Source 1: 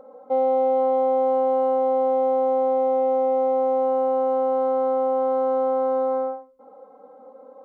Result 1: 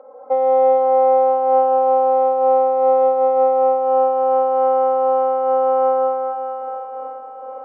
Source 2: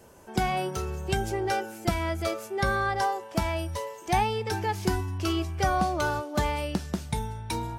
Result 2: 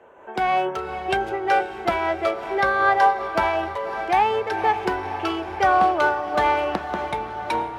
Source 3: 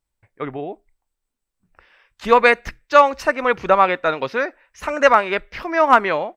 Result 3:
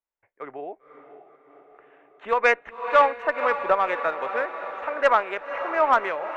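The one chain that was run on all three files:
Wiener smoothing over 9 samples; three-band isolator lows -20 dB, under 370 Hz, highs -16 dB, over 3500 Hz; on a send: diffused feedback echo 0.534 s, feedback 66%, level -11.5 dB; on the sum: added harmonics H 2 -23 dB, 4 -25 dB, 5 -25 dB, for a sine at 1.5 dBFS; noise-modulated level, depth 55%; normalise peaks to -6 dBFS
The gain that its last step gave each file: +8.0, +10.0, -3.5 dB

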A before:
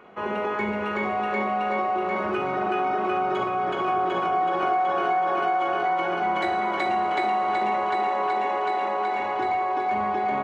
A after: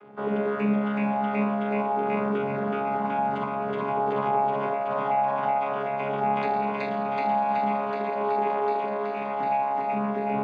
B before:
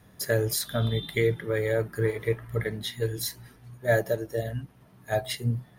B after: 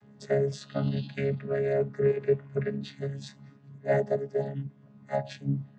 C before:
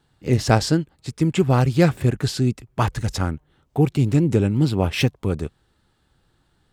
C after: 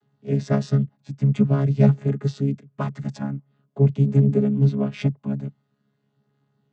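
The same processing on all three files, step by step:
chord vocoder bare fifth, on C#3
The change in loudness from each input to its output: -1.5, -1.5, -1.0 LU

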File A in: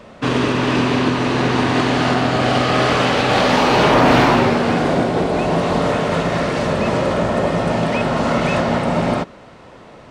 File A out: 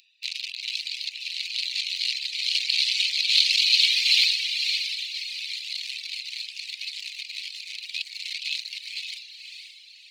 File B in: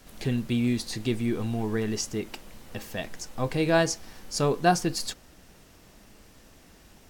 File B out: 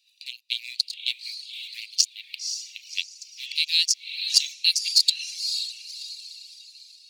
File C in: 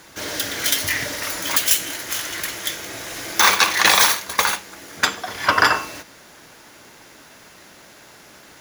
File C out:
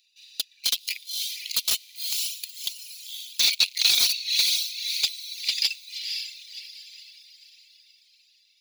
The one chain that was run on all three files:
Wiener smoothing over 41 samples; in parallel at +0.5 dB: compressor 8:1, threshold -27 dBFS; on the sum: steep high-pass 2300 Hz 72 dB/oct; on a send: diffused feedback echo 0.534 s, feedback 43%, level -5.5 dB; on the sum: reverb removal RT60 1.1 s; overloaded stage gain 17.5 dB; bell 4200 Hz +13.5 dB 0.42 oct; match loudness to -24 LUFS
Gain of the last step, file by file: +3.5, +6.0, -4.0 dB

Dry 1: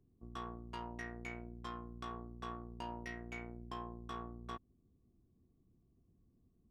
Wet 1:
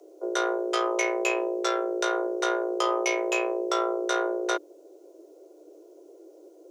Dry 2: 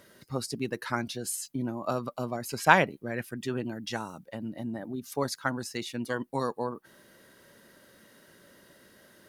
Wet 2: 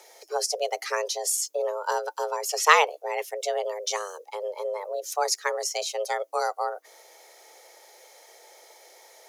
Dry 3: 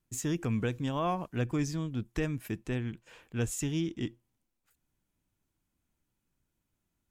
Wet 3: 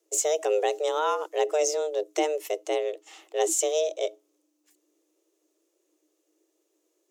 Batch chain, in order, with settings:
frequency shift +300 Hz; fifteen-band EQ 250 Hz +6 dB, 1600 Hz -5 dB, 6300 Hz +10 dB; match loudness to -27 LUFS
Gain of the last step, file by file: +19.5, +4.0, +5.5 dB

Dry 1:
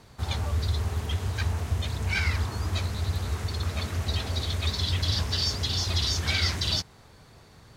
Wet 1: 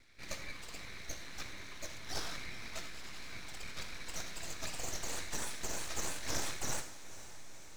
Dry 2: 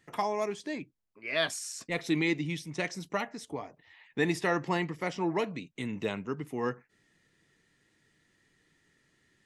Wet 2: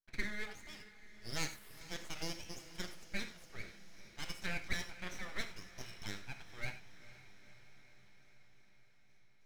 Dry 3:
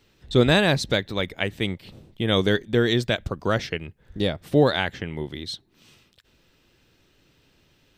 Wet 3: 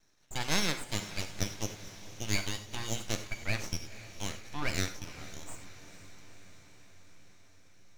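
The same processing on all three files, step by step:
gate with hold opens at -58 dBFS; double band-pass 1800 Hz, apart 1.3 oct; full-wave rectifier; diffused feedback echo 0.485 s, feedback 67%, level -15 dB; non-linear reverb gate 0.12 s flat, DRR 8 dB; gain +4.5 dB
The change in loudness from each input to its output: -14.0, -12.0, -12.5 LU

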